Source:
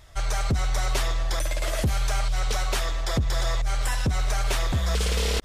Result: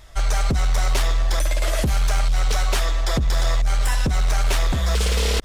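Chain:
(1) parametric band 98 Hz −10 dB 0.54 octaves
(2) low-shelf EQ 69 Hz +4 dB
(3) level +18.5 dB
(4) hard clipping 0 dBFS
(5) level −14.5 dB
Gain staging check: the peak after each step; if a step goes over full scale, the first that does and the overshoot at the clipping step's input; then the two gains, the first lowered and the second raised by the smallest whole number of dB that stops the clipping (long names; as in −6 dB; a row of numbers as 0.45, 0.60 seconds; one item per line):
−16.0, −14.5, +4.0, 0.0, −14.5 dBFS
step 3, 4.0 dB
step 3 +14.5 dB, step 5 −10.5 dB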